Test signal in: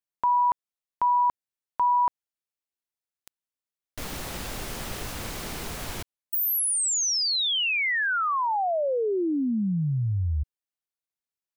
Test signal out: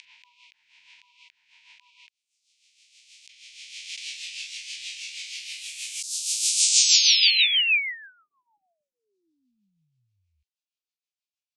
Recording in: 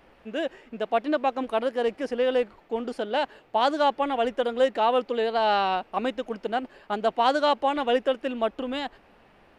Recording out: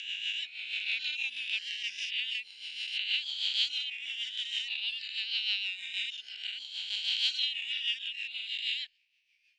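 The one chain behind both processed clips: spectral swells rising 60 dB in 2.49 s; elliptic high-pass 2400 Hz, stop band 50 dB; reverb removal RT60 1.2 s; Bessel low-pass 5100 Hz, order 8; vocal rider within 3 dB 2 s; rotary speaker horn 6.3 Hz; gain +7 dB

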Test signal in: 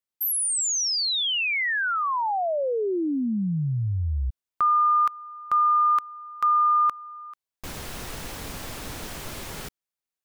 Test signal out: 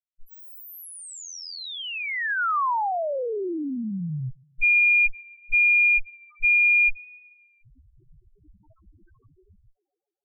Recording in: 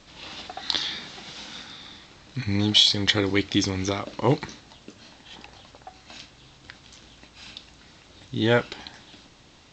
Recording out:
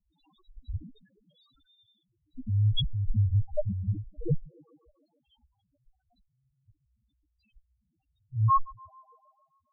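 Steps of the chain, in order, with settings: dynamic EQ 600 Hz, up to +4 dB, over -37 dBFS, Q 0.9; added harmonics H 4 -10 dB, 7 -15 dB, 8 -7 dB, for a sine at -3 dBFS; on a send: tape echo 0.144 s, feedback 63%, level -22.5 dB, low-pass 4200 Hz; on the sum: modulation noise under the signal 22 dB; loudest bins only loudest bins 1; gain +1.5 dB

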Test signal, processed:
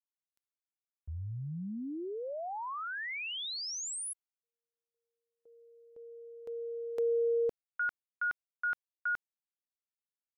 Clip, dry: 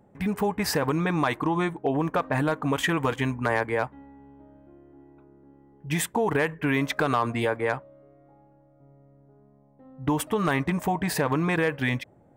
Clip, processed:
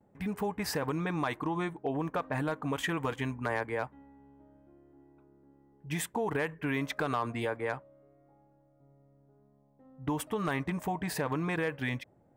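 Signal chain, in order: gate with hold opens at -55 dBFS; gain -7.5 dB

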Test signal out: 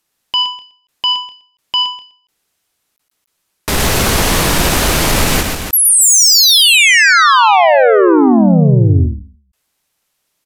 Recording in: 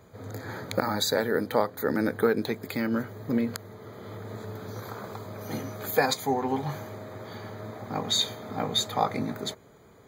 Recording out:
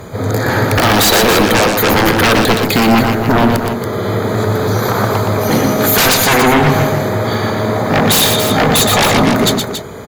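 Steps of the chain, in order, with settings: downsampling 32000 Hz; sine folder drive 20 dB, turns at -8 dBFS; on a send: loudspeakers at several distances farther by 41 m -5 dB, 96 m -8 dB; on the sum: ending taper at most 120 dB/s

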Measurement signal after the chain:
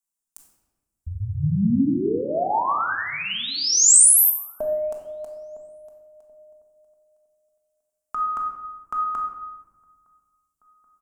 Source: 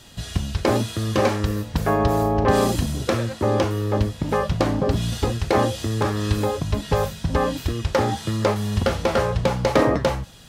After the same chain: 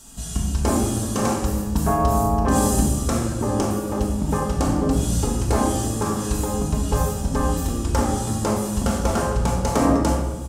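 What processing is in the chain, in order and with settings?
graphic EQ 125/500/2000/4000/8000 Hz -11/-9/-12/-11/+9 dB; outdoor echo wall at 290 m, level -29 dB; shoebox room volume 780 m³, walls mixed, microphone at 1.6 m; gain +2.5 dB

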